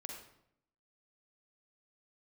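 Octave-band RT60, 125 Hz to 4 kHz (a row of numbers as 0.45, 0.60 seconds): 0.85, 0.90, 0.75, 0.70, 0.60, 0.55 seconds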